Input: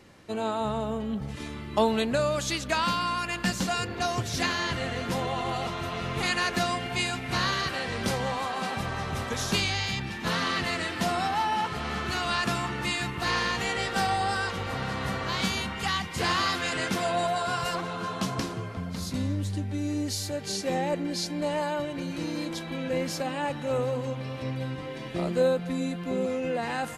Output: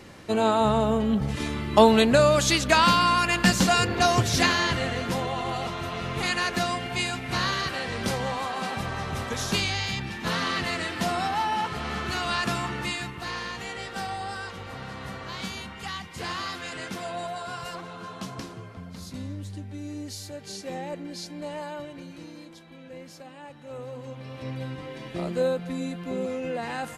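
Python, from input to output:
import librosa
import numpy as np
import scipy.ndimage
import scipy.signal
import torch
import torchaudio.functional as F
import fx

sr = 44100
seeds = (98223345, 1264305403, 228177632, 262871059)

y = fx.gain(x, sr, db=fx.line((4.22, 7.5), (5.3, 0.5), (12.77, 0.5), (13.31, -6.5), (21.86, -6.5), (22.57, -14.0), (23.53, -14.0), (24.54, -1.5)))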